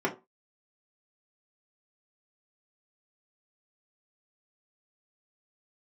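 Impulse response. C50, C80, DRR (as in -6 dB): 14.0 dB, 20.0 dB, -3.5 dB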